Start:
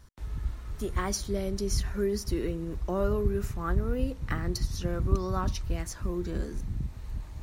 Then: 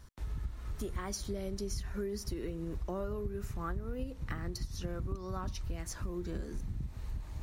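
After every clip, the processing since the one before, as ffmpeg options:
ffmpeg -i in.wav -af "acompressor=threshold=-34dB:ratio=6" out.wav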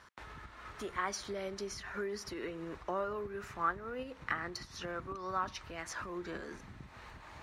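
ffmpeg -i in.wav -af "bandpass=frequency=1500:width_type=q:width=0.91:csg=0,volume=10dB" out.wav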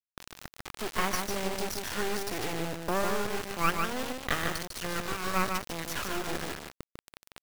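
ffmpeg -i in.wav -filter_complex "[0:a]acrusher=bits=4:dc=4:mix=0:aa=0.000001,asplit=2[link_01][link_02];[link_02]aecho=0:1:149:0.596[link_03];[link_01][link_03]amix=inputs=2:normalize=0,volume=9dB" out.wav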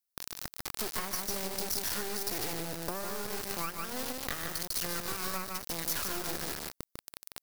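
ffmpeg -i in.wav -af "acompressor=threshold=-33dB:ratio=12,aexciter=amount=2.1:drive=6.2:freq=4200,volume=1dB" out.wav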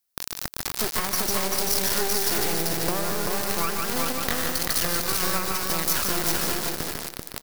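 ffmpeg -i in.wav -af "aecho=1:1:388|776|1164:0.708|0.127|0.0229,volume=8.5dB" out.wav

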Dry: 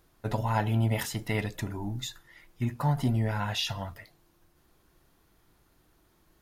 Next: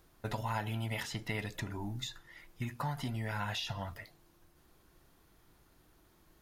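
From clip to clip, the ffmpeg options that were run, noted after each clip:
ffmpeg -i in.wav -filter_complex "[0:a]acrossover=split=1100|6300[link_01][link_02][link_03];[link_01]acompressor=threshold=-37dB:ratio=4[link_04];[link_02]acompressor=threshold=-38dB:ratio=4[link_05];[link_03]acompressor=threshold=-57dB:ratio=4[link_06];[link_04][link_05][link_06]amix=inputs=3:normalize=0" out.wav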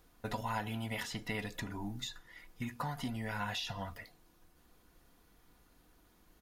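ffmpeg -i in.wav -af "aecho=1:1:4.1:0.39,volume=-1dB" out.wav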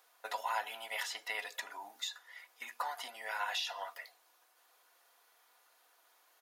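ffmpeg -i in.wav -af "highpass=frequency=600:width=0.5412,highpass=frequency=600:width=1.3066,volume=2.5dB" out.wav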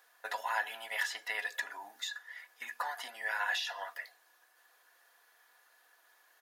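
ffmpeg -i in.wav -af "equalizer=frequency=1700:width_type=o:width=0.2:gain=13.5" out.wav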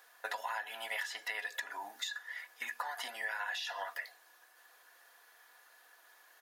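ffmpeg -i in.wav -af "acompressor=threshold=-39dB:ratio=10,volume=4dB" out.wav

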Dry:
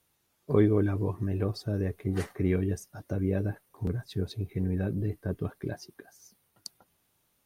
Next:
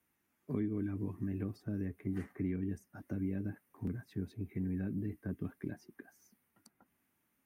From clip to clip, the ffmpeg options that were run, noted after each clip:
ffmpeg -i in.wav -filter_complex "[0:a]equalizer=frequency=125:width_type=o:width=1:gain=-5,equalizer=frequency=250:width_type=o:width=1:gain=10,equalizer=frequency=500:width_type=o:width=1:gain=-5,equalizer=frequency=2000:width_type=o:width=1:gain=7,equalizer=frequency=4000:width_type=o:width=1:gain=-10,equalizer=frequency=8000:width_type=o:width=1:gain=-3,acrossover=split=320|2200[link_01][link_02][link_03];[link_01]acompressor=threshold=-28dB:ratio=4[link_04];[link_02]acompressor=threshold=-43dB:ratio=4[link_05];[link_03]acompressor=threshold=-57dB:ratio=4[link_06];[link_04][link_05][link_06]amix=inputs=3:normalize=0,highpass=52,volume=-6dB" out.wav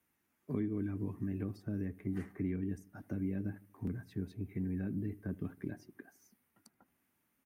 ffmpeg -i in.wav -filter_complex "[0:a]asplit=2[link_01][link_02];[link_02]adelay=78,lowpass=frequency=810:poles=1,volume=-18.5dB,asplit=2[link_03][link_04];[link_04]adelay=78,lowpass=frequency=810:poles=1,volume=0.46,asplit=2[link_05][link_06];[link_06]adelay=78,lowpass=frequency=810:poles=1,volume=0.46,asplit=2[link_07][link_08];[link_08]adelay=78,lowpass=frequency=810:poles=1,volume=0.46[link_09];[link_01][link_03][link_05][link_07][link_09]amix=inputs=5:normalize=0" out.wav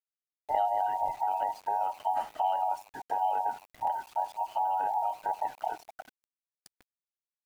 ffmpeg -i in.wav -af "afftfilt=real='real(if(between(b,1,1008),(2*floor((b-1)/48)+1)*48-b,b),0)':imag='imag(if(between(b,1,1008),(2*floor((b-1)/48)+1)*48-b,b),0)*if(between(b,1,1008),-1,1)':win_size=2048:overlap=0.75,aeval=exprs='val(0)*gte(abs(val(0)),0.00168)':channel_layout=same,volume=7.5dB" out.wav

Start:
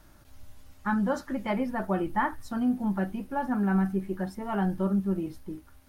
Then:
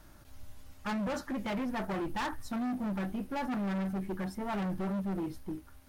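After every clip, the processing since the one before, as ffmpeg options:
ffmpeg -i in.wav -af "volume=31.5dB,asoftclip=hard,volume=-31.5dB" out.wav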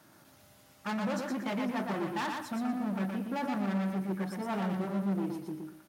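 ffmpeg -i in.wav -af "highpass=frequency=130:width=0.5412,highpass=frequency=130:width=1.3066,aecho=1:1:119|238|357|476:0.631|0.17|0.046|0.0124" out.wav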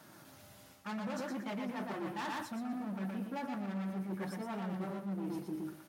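ffmpeg -i in.wav -af "flanger=delay=4.3:depth=7.2:regen=-53:speed=0.65:shape=triangular,areverse,acompressor=threshold=-43dB:ratio=6,areverse,volume=6.5dB" out.wav

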